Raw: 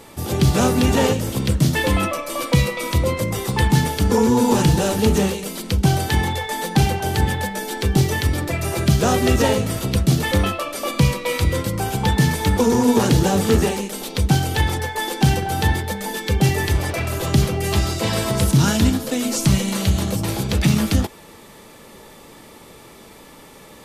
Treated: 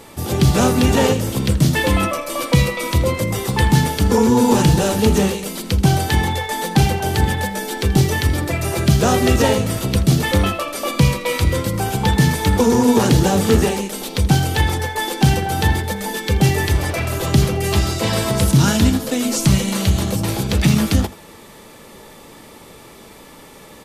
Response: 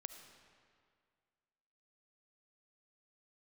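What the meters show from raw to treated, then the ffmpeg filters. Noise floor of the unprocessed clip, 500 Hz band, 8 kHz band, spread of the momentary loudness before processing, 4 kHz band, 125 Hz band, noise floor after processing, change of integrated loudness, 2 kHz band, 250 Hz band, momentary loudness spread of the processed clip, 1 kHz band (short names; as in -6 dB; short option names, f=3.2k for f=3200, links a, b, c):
-44 dBFS, +2.0 dB, +2.0 dB, 7 LU, +2.0 dB, +2.0 dB, -42 dBFS, +2.0 dB, +2.0 dB, +2.0 dB, 7 LU, +2.0 dB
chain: -af "aecho=1:1:81:0.126,volume=2dB"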